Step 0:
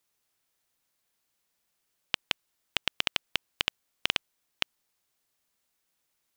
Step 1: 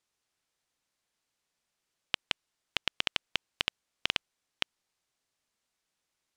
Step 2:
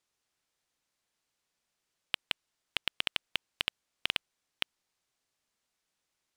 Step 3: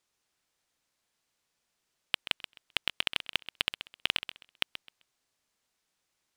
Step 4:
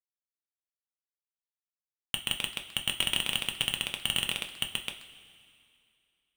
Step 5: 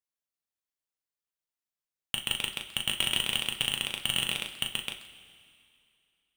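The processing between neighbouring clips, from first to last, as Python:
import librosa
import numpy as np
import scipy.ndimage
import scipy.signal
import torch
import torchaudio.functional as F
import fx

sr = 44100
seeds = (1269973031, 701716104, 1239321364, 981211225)

y1 = scipy.signal.sosfilt(scipy.signal.butter(2, 8300.0, 'lowpass', fs=sr, output='sos'), x)
y1 = y1 * 10.0 ** (-2.0 / 20.0)
y2 = np.clip(y1, -10.0 ** (-10.5 / 20.0), 10.0 ** (-10.5 / 20.0))
y3 = fx.echo_feedback(y2, sr, ms=130, feedback_pct=22, wet_db=-12.0)
y3 = y3 * 10.0 ** (2.5 / 20.0)
y4 = fx.fuzz(y3, sr, gain_db=46.0, gate_db=-48.0)
y4 = fx.rev_double_slope(y4, sr, seeds[0], early_s=0.25, late_s=2.5, knee_db=-17, drr_db=3.5)
y4 = y4 * 10.0 ** (-3.5 / 20.0)
y5 = fx.doubler(y4, sr, ms=38.0, db=-6.5)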